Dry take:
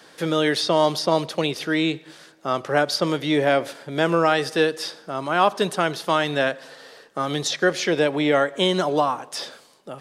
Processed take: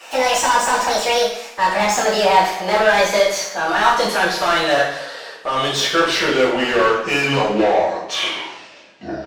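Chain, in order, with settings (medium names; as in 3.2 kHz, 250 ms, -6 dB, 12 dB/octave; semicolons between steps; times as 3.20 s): gliding tape speed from 165% -> 51%; overdrive pedal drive 22 dB, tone 3.8 kHz, clips at -5.5 dBFS; two-slope reverb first 0.65 s, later 1.7 s, from -25 dB, DRR -9 dB; trim -11 dB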